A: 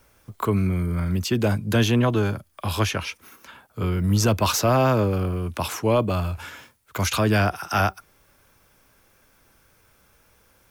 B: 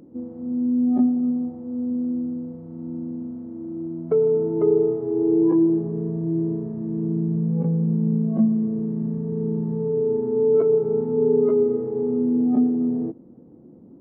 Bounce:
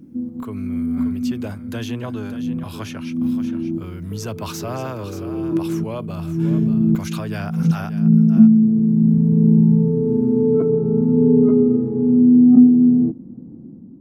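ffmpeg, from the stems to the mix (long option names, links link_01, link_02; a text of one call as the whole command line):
ffmpeg -i stem1.wav -i stem2.wav -filter_complex "[0:a]volume=-15.5dB,asplit=3[link_01][link_02][link_03];[link_02]volume=-10.5dB[link_04];[1:a]lowshelf=frequency=330:width_type=q:width=1.5:gain=10.5,volume=-5.5dB[link_05];[link_03]apad=whole_len=617530[link_06];[link_05][link_06]sidechaincompress=threshold=-53dB:ratio=8:attack=16:release=167[link_07];[link_04]aecho=0:1:580:1[link_08];[link_01][link_07][link_08]amix=inputs=3:normalize=0,dynaudnorm=framelen=130:gausssize=7:maxgain=6.5dB" out.wav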